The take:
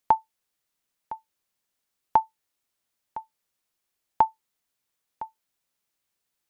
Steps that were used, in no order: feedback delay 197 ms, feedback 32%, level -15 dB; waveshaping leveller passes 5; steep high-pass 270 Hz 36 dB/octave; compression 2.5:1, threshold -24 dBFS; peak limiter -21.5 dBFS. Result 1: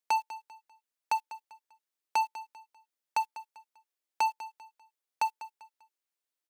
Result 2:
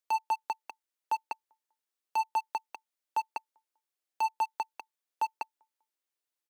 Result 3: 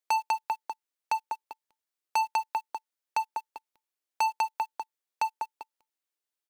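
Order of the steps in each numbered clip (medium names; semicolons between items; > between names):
compression > peak limiter > steep high-pass > waveshaping leveller > feedback delay; feedback delay > compression > waveshaping leveller > steep high-pass > peak limiter; feedback delay > peak limiter > steep high-pass > waveshaping leveller > compression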